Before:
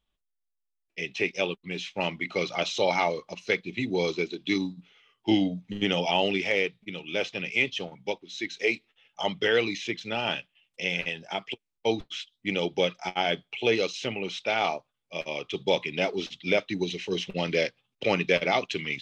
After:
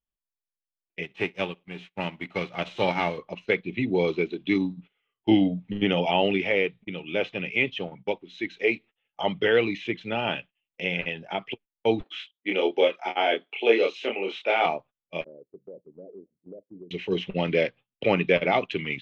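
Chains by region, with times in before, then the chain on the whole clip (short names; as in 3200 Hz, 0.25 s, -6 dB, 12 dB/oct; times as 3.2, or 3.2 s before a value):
1.02–3.17 spectral whitening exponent 0.6 + feedback echo 62 ms, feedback 37%, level -21 dB + upward expander, over -47 dBFS
12.03–14.66 HPF 300 Hz 24 dB/oct + doubler 26 ms -3 dB
15.24–16.91 steep low-pass 550 Hz 48 dB/oct + tilt +4 dB/oct + compressor 3:1, threshold -47 dBFS
whole clip: tilt shelf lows +4 dB, about 1400 Hz; gate -45 dBFS, range -17 dB; resonant high shelf 4000 Hz -10.5 dB, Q 1.5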